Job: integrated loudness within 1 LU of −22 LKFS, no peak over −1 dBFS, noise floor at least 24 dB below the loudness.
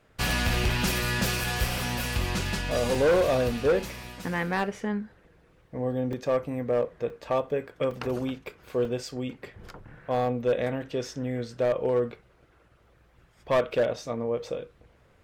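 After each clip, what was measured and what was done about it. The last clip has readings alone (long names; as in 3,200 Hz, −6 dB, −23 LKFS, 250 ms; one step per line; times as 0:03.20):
share of clipped samples 1.1%; peaks flattened at −18.0 dBFS; number of dropouts 8; longest dropout 2.7 ms; integrated loudness −28.0 LKFS; sample peak −18.0 dBFS; target loudness −22.0 LKFS
→ clipped peaks rebuilt −18 dBFS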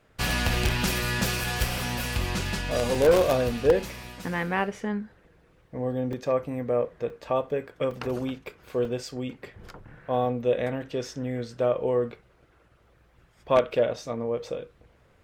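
share of clipped samples 0.0%; number of dropouts 8; longest dropout 2.7 ms
→ repair the gap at 0:01.44/0:02.95/0:03.80/0:06.13/0:07.10/0:07.91/0:08.85/0:10.82, 2.7 ms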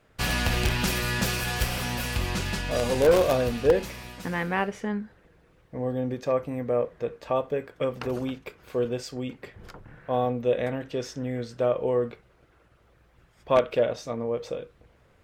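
number of dropouts 0; integrated loudness −27.5 LKFS; sample peak −9.0 dBFS; target loudness −22.0 LKFS
→ level +5.5 dB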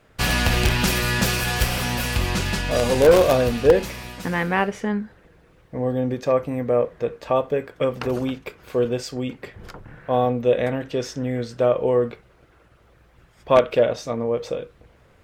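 integrated loudness −22.0 LKFS; sample peak −3.5 dBFS; background noise floor −56 dBFS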